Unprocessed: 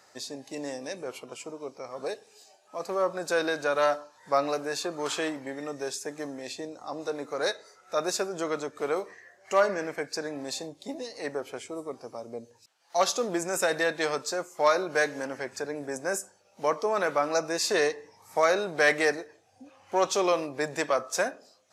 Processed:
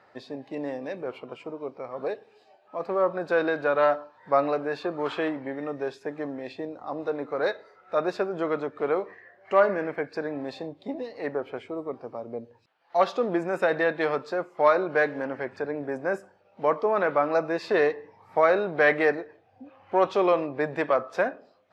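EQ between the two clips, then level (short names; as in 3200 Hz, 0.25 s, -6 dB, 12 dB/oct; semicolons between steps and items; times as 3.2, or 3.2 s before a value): air absorption 430 m; +4.5 dB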